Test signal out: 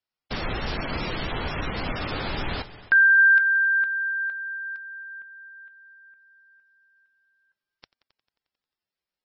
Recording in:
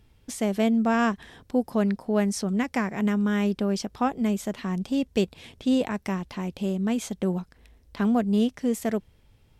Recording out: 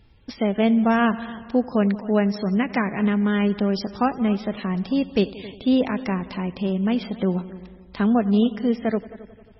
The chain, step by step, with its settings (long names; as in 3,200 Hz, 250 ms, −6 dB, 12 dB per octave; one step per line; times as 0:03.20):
echo machine with several playback heads 89 ms, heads all three, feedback 44%, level −21 dB
level +4 dB
MP3 16 kbit/s 24,000 Hz